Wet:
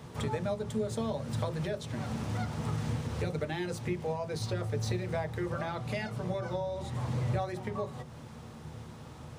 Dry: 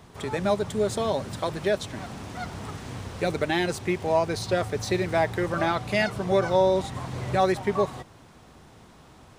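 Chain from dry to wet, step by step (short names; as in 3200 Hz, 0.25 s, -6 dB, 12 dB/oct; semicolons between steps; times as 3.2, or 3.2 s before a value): compressor 4:1, threshold -36 dBFS, peak gain reduction 16.5 dB; on a send: reverb RT60 0.30 s, pre-delay 3 ms, DRR 6 dB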